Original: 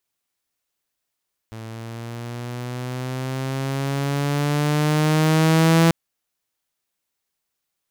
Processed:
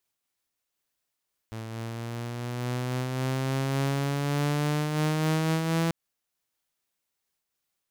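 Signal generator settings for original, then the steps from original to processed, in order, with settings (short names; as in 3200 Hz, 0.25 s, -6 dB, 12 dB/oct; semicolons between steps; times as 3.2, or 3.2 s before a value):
gliding synth tone saw, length 4.39 s, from 111 Hz, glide +7 st, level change +21 dB, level -9.5 dB
compressor 6:1, threshold -22 dBFS; noise-modulated level, depth 50%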